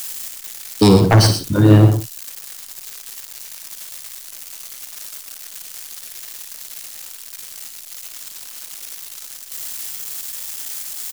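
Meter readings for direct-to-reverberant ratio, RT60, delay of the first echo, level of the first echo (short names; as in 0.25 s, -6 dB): none, none, 56 ms, -8.5 dB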